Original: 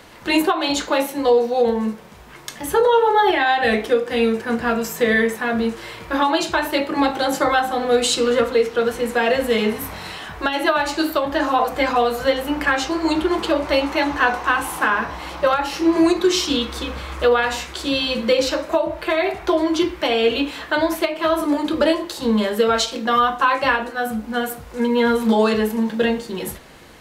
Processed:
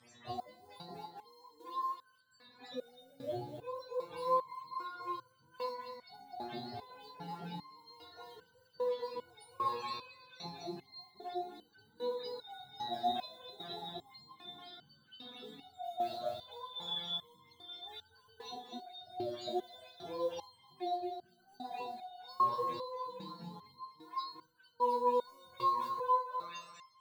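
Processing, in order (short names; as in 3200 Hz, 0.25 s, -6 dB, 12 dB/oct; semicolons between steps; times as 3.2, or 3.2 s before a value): spectrum mirrored in octaves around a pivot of 480 Hz; limiter -13.5 dBFS, peak gain reduction 9.5 dB; weighting filter ITU-R 468; modulation noise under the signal 31 dB; thinning echo 0.248 s, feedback 41%, high-pass 660 Hz, level -7 dB; stepped resonator 2.5 Hz 120–1500 Hz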